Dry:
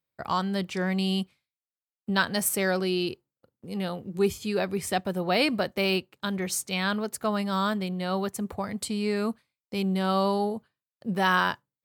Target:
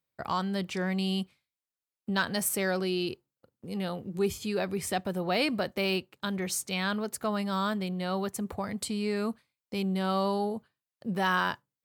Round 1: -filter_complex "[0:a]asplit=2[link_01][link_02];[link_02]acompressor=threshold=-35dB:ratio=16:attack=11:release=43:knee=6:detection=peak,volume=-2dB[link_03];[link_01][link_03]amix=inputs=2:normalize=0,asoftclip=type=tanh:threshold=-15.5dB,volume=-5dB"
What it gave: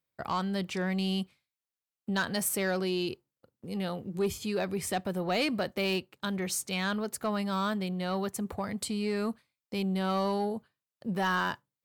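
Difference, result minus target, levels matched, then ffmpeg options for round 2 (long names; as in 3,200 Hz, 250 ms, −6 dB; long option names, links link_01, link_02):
soft clipping: distortion +15 dB
-filter_complex "[0:a]asplit=2[link_01][link_02];[link_02]acompressor=threshold=-35dB:ratio=16:attack=11:release=43:knee=6:detection=peak,volume=-2dB[link_03];[link_01][link_03]amix=inputs=2:normalize=0,asoftclip=type=tanh:threshold=-5.5dB,volume=-5dB"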